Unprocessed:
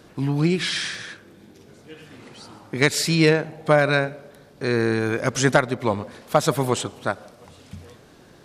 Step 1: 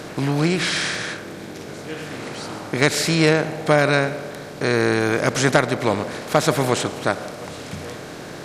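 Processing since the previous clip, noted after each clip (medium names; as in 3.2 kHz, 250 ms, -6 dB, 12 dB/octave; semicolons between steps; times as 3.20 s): spectral levelling over time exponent 0.6; trim -1.5 dB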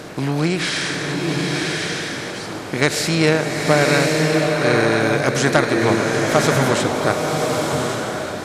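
swelling reverb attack 1110 ms, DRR 0 dB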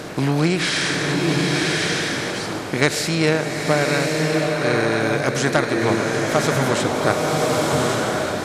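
gain riding within 4 dB 0.5 s; trim -1 dB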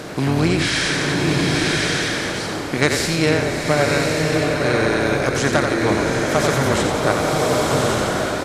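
frequency-shifting echo 88 ms, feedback 50%, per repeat -32 Hz, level -6 dB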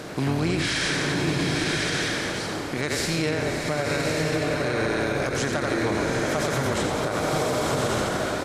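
peak limiter -10.5 dBFS, peak gain reduction 9 dB; trim -4.5 dB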